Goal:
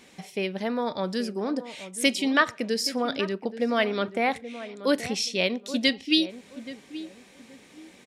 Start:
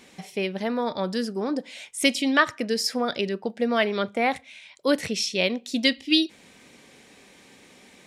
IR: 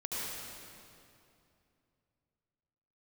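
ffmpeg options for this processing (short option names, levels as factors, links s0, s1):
-filter_complex "[0:a]asplit=2[s0][s1];[s1]adelay=827,lowpass=f=1100:p=1,volume=0.237,asplit=2[s2][s3];[s3]adelay=827,lowpass=f=1100:p=1,volume=0.3,asplit=2[s4][s5];[s5]adelay=827,lowpass=f=1100:p=1,volume=0.3[s6];[s0][s2][s4][s6]amix=inputs=4:normalize=0,volume=0.841"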